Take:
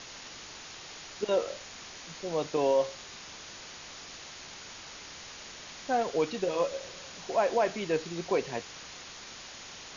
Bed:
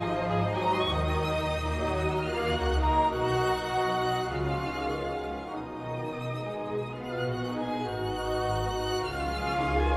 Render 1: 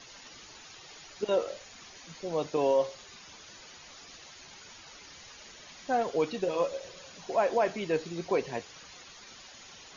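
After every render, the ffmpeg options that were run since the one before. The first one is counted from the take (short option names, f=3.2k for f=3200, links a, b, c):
-af "afftdn=nr=10:nf=-46"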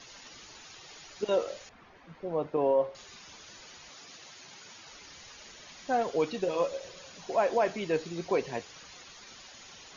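-filter_complex "[0:a]asettb=1/sr,asplit=3[a][b][c];[a]atrim=end=1.694[d];[b]atrim=start=1.69:end=2.95,asetpts=PTS-STARTPTS,afade=t=in:d=0.004:c=qsin,afade=t=out:st=1.256:d=0.004:c=qsin,lowpass=1.6k[e];[c]atrim=start=2.946[f];[d][e]acrossfade=d=0.004:c1=hsin:c2=qsin[g];[g][f]acrossfade=d=0.004:c1=qsin:c2=hsin,asettb=1/sr,asplit=3[h][i][j];[h]atrim=end=3.894[k];[i]atrim=start=3.89:end=4.89,asetpts=PTS-STARTPTS,afade=t=in:d=0.004:c=qsin,afade=t=out:st=0.996:d=0.004:c=qsin,highpass=f=99:w=0.5412,highpass=f=99:w=1.3066[l];[j]atrim=start=4.886[m];[k][l]acrossfade=d=0.004:c1=hsin:c2=qsin[n];[n][m]acrossfade=d=0.004:c1=qsin:c2=hsin"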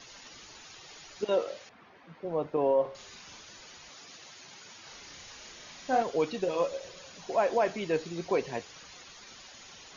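-filter_complex "[0:a]asettb=1/sr,asplit=3[a][b][c];[a]atrim=end=1.254[d];[b]atrim=start=1.25:end=2.25,asetpts=PTS-STARTPTS,afade=t=in:d=0.004:c=qsin,afade=t=out:st=0.996:d=0.004:c=qsin,highpass=120,lowpass=5.7k[e];[c]atrim=start=2.246[f];[d][e]acrossfade=d=0.004:c1=hsin:c2=qsin[g];[g][f]acrossfade=d=0.004:c1=qsin:c2=hsin,asettb=1/sr,asplit=3[h][i][j];[h]atrim=end=2.814[k];[i]atrim=start=2.81:end=3.41,asetpts=PTS-STARTPTS,afade=t=in:d=0.004:c=qsin,afade=t=out:st=0.596:d=0.004:c=qsin,asplit=2[l][m];[m]adelay=40,volume=-6dB[n];[l][n]amix=inputs=2:normalize=0,atrim=end_sample=26460[o];[j]atrim=start=3.406[p];[k][o]acrossfade=d=0.004:c1=hsin:c2=qsin[q];[q][p]acrossfade=d=0.004:c1=qsin:c2=hsin,asettb=1/sr,asplit=3[r][s][t];[r]atrim=end=4.804[u];[s]atrim=start=4.8:end=6.02,asetpts=PTS-STARTPTS,afade=t=in:d=0.004:c=qsin,afade=t=out:st=1.216:d=0.004:c=qsin,asplit=2[v][w];[w]adelay=35,volume=-3.5dB[x];[v][x]amix=inputs=2:normalize=0,atrim=end_sample=53802[y];[t]atrim=start=6.016[z];[u][y]acrossfade=d=0.004:c1=hsin:c2=qsin[aa];[aa][z]acrossfade=d=0.004:c1=qsin:c2=hsin"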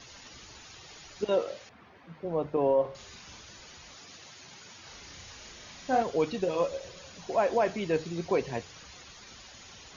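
-af "equalizer=f=69:t=o:w=2.2:g=11,bandreject=f=50:t=h:w=6,bandreject=f=100:t=h:w=6,bandreject=f=150:t=h:w=6"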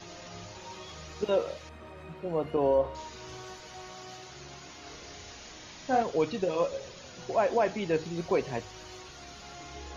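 -filter_complex "[1:a]volume=-19dB[a];[0:a][a]amix=inputs=2:normalize=0"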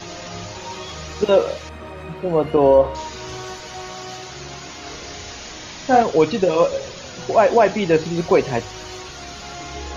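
-af "volume=12dB"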